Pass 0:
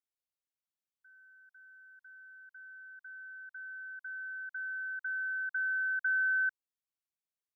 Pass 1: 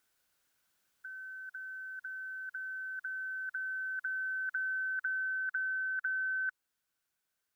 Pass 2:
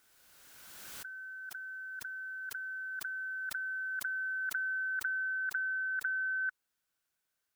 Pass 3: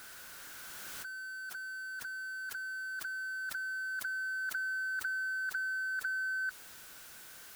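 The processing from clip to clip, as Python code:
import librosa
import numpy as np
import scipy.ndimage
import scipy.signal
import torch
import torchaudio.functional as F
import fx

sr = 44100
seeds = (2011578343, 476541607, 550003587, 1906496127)

y1 = fx.peak_eq(x, sr, hz=1500.0, db=11.0, octaves=0.24)
y1 = fx.rider(y1, sr, range_db=4, speed_s=0.5)
y1 = fx.spectral_comp(y1, sr, ratio=2.0)
y1 = y1 * 10.0 ** (-5.5 / 20.0)
y2 = fx.pre_swell(y1, sr, db_per_s=24.0)
y3 = y2 + 0.5 * 10.0 ** (-41.5 / 20.0) * np.sign(y2)
y3 = y3 * 10.0 ** (-2.5 / 20.0)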